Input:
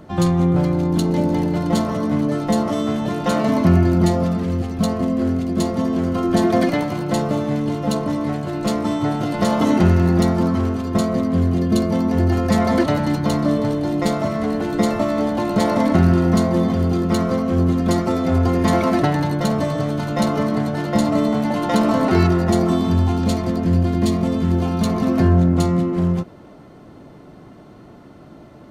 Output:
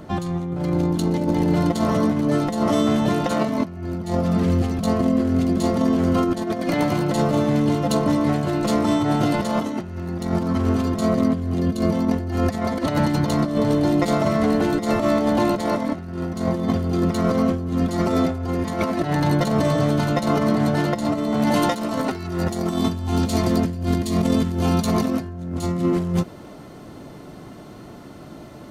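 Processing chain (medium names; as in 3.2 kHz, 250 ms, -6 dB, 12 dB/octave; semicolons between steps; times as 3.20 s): treble shelf 4 kHz +2.5 dB, from 21.47 s +10 dB; compressor with a negative ratio -20 dBFS, ratio -0.5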